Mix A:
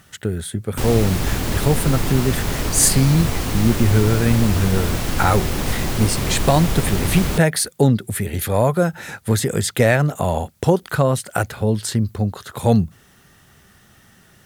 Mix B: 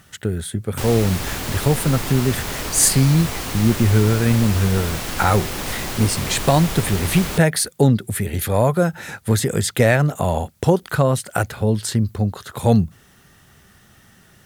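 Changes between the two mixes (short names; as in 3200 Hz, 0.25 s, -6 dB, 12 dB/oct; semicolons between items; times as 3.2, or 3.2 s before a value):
speech: add low shelf 340 Hz +10 dB; master: add low shelf 390 Hz -9 dB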